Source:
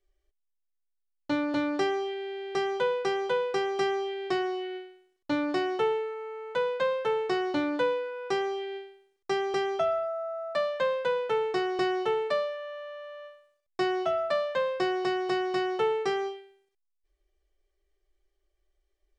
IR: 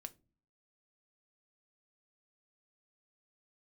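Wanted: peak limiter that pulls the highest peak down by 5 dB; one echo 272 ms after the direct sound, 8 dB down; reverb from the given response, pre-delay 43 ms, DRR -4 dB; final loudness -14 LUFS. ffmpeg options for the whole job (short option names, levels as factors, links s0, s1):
-filter_complex "[0:a]alimiter=limit=0.0891:level=0:latency=1,aecho=1:1:272:0.398,asplit=2[s0][s1];[1:a]atrim=start_sample=2205,adelay=43[s2];[s1][s2]afir=irnorm=-1:irlink=0,volume=2.99[s3];[s0][s3]amix=inputs=2:normalize=0,volume=3.35"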